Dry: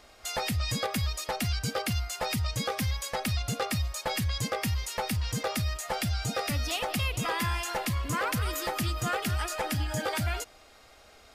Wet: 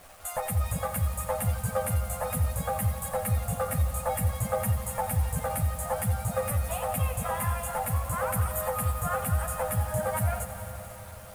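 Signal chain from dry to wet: FFT filter 160 Hz 0 dB, 250 Hz -11 dB, 360 Hz -27 dB, 520 Hz +2 dB, 1.2 kHz 0 dB, 5.3 kHz -24 dB, 8.9 kHz +4 dB; in parallel at +1 dB: compression 4:1, threshold -40 dBFS, peak gain reduction 12 dB; on the sum: word length cut 8-bit, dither none; chorus voices 2, 0.65 Hz, delay 11 ms, depth 1.4 ms; echo that smears into a reverb 465 ms, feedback 61%, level -13 dB; on a send at -17.5 dB: reverberation RT60 0.30 s, pre-delay 88 ms; on the sum: bit-crushed delay 87 ms, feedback 80%, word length 8-bit, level -13 dB; trim +1.5 dB

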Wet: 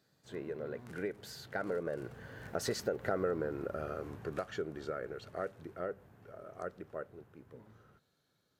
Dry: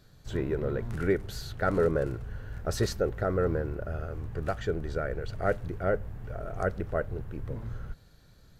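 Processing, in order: Doppler pass-by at 3.23 s, 15 m/s, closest 3.6 m; high-pass 200 Hz 12 dB/octave; compression 4:1, threshold -46 dBFS, peak gain reduction 18.5 dB; trim +12.5 dB

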